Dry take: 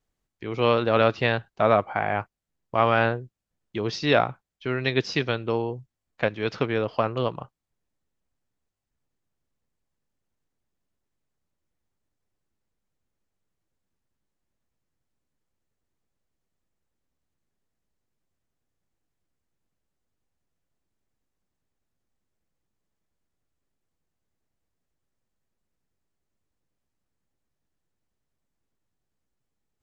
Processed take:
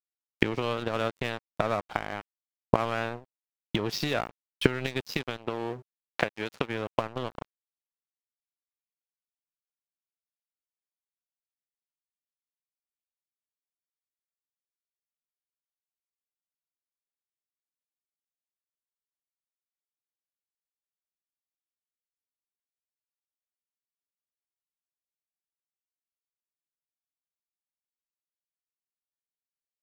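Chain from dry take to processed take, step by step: recorder AGC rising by 73 dB/s; crossover distortion -26.5 dBFS; 5.37–6.69 s: bass shelf 140 Hz -8 dB; trim -7.5 dB

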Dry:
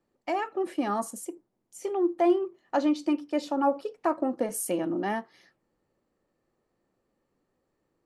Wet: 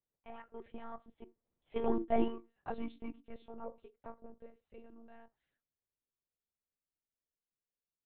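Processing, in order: Doppler pass-by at 1.89 s, 18 m/s, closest 3.9 m; monotone LPC vocoder at 8 kHz 230 Hz; trim -2.5 dB

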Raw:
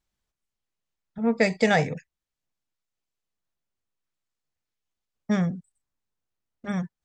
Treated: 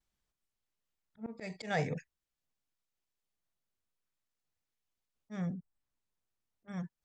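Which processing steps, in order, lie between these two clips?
5.53–6.68 s: low-pass that closes with the level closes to 1.2 kHz, closed at -41 dBFS; slow attack 355 ms; vibrato 0.41 Hz 18 cents; trim -3 dB

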